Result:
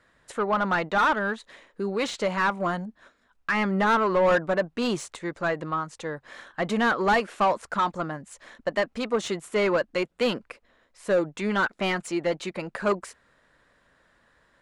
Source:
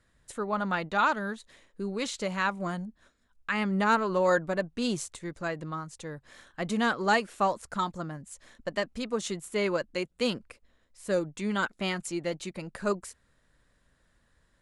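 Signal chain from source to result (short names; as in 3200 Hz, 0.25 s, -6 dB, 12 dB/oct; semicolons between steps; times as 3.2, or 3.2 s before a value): overdrive pedal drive 19 dB, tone 1500 Hz, clips at -12 dBFS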